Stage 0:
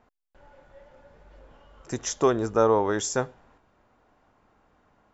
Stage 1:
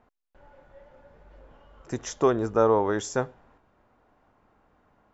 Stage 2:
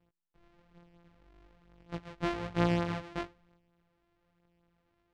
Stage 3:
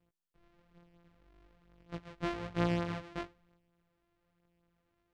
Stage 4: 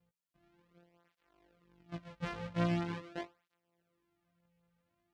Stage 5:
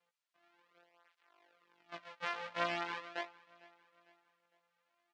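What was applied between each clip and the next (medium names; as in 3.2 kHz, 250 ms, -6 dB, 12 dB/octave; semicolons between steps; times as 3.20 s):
treble shelf 3.8 kHz -8.5 dB
sorted samples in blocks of 256 samples; chorus 1.1 Hz, delay 17 ms, depth 3.4 ms; low-pass 3.5 kHz 12 dB/octave; trim -6.5 dB
band-stop 820 Hz, Q 12; trim -3 dB
cancelling through-zero flanger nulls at 0.43 Hz, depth 3.2 ms; trim +1 dB
high-pass 810 Hz 12 dB/octave; distance through air 79 m; feedback delay 454 ms, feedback 46%, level -23 dB; trim +6.5 dB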